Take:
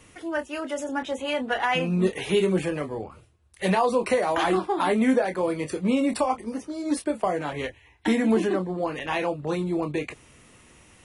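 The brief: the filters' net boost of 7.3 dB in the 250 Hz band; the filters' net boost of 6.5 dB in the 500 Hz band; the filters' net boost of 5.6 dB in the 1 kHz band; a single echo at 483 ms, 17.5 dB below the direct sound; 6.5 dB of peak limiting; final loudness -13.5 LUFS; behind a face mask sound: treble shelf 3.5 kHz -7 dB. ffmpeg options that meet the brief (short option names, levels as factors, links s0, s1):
-af "equalizer=f=250:t=o:g=7.5,equalizer=f=500:t=o:g=4.5,equalizer=f=1000:t=o:g=5.5,alimiter=limit=0.299:level=0:latency=1,highshelf=f=3500:g=-7,aecho=1:1:483:0.133,volume=2.51"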